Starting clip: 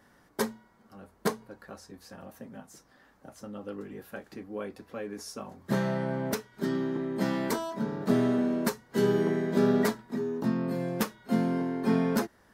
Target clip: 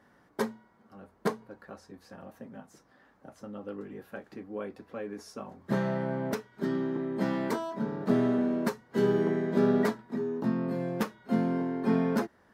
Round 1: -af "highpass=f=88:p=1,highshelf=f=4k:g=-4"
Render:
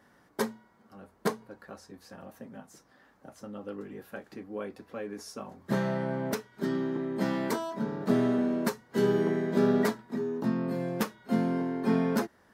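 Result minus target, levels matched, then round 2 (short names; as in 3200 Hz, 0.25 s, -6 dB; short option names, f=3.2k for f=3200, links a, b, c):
8000 Hz band +5.5 dB
-af "highpass=f=88:p=1,highshelf=f=4k:g=-11"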